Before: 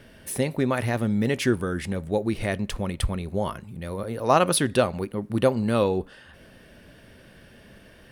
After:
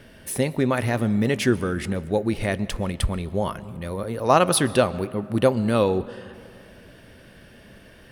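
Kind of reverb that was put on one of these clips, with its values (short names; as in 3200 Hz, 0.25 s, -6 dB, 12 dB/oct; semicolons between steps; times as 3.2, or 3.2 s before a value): digital reverb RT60 2.4 s, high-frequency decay 0.45×, pre-delay 90 ms, DRR 18 dB; gain +2 dB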